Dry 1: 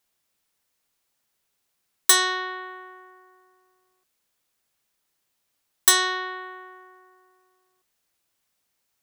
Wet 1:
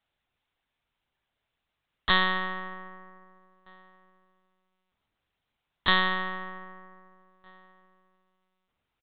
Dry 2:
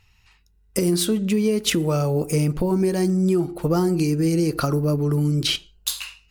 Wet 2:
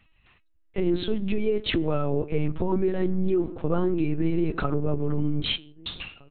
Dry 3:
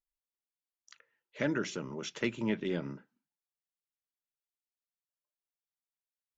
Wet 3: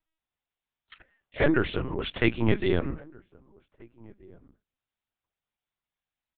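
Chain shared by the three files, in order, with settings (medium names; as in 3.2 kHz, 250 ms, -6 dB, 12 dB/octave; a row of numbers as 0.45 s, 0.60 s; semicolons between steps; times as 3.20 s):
echo from a far wall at 270 m, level -25 dB; LPC vocoder at 8 kHz pitch kept; normalise loudness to -27 LUFS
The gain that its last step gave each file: 0.0 dB, -3.0 dB, +9.5 dB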